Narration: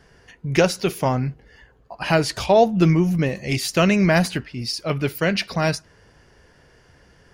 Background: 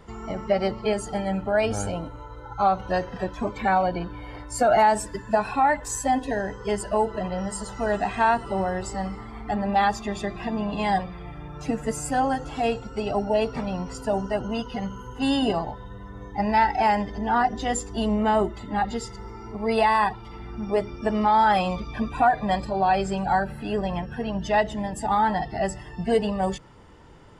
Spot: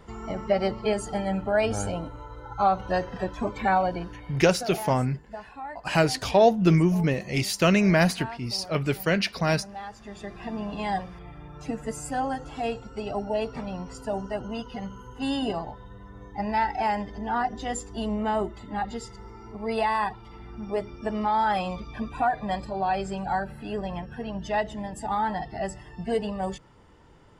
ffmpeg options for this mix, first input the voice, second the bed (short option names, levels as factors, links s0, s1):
-filter_complex "[0:a]adelay=3850,volume=0.708[s0];[1:a]volume=3.76,afade=t=out:st=3.74:d=0.98:silence=0.149624,afade=t=in:st=9.93:d=0.6:silence=0.237137[s1];[s0][s1]amix=inputs=2:normalize=0"